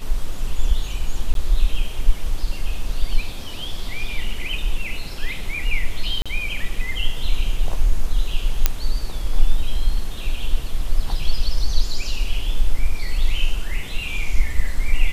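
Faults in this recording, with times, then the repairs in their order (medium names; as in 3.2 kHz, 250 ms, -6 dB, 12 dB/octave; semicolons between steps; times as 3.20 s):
1.34–1.35 s: dropout 12 ms
6.22–6.26 s: dropout 36 ms
8.66 s: pop 0 dBFS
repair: de-click; interpolate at 1.34 s, 12 ms; interpolate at 6.22 s, 36 ms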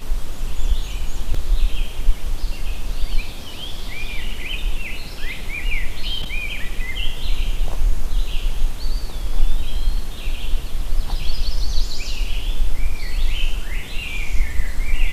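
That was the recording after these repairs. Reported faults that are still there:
nothing left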